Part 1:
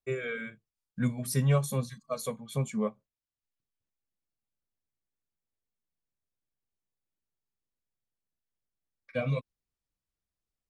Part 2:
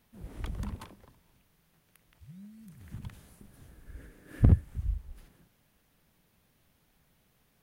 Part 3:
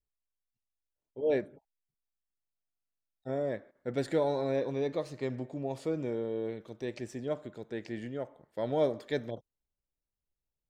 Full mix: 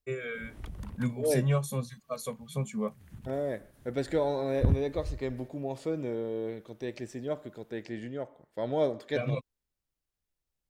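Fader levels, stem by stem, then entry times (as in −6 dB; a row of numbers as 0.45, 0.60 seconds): −2.0, −4.5, +0.5 decibels; 0.00, 0.20, 0.00 seconds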